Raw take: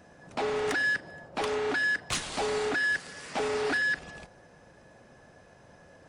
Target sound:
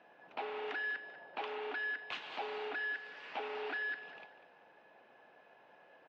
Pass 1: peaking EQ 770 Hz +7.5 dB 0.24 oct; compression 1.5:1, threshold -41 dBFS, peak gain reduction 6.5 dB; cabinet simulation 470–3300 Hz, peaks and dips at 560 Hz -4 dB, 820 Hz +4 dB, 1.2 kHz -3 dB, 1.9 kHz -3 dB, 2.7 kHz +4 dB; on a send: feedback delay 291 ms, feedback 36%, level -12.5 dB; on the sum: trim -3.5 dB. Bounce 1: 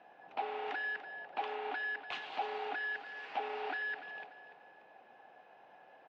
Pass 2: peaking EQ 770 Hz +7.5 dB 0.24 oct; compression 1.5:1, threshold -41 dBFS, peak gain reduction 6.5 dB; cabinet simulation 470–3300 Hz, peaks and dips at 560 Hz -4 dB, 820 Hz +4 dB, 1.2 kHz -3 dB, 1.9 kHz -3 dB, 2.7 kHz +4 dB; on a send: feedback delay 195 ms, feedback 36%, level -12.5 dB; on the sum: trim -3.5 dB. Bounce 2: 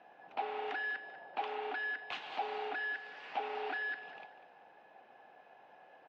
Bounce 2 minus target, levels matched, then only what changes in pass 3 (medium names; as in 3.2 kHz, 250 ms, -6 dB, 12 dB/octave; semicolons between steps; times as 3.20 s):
1 kHz band +4.0 dB
change: peaking EQ 770 Hz -2 dB 0.24 oct